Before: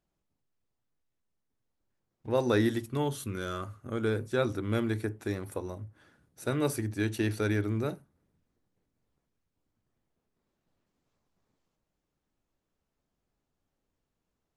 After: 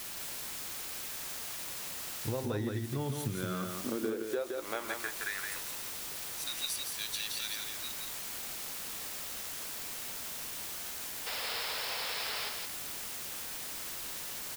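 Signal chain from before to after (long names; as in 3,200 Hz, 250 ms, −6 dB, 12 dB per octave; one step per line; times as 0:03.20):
high-pass filter sweep 93 Hz → 3,900 Hz, 0:03.10–0:06.03
in parallel at −6 dB: bit-depth reduction 6 bits, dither triangular
on the sum: gain on a spectral selection 0:11.27–0:12.49, 400–5,500 Hz +11 dB
downward compressor 10 to 1, threshold −32 dBFS, peak gain reduction 18 dB
on a send: single-tap delay 169 ms −4.5 dB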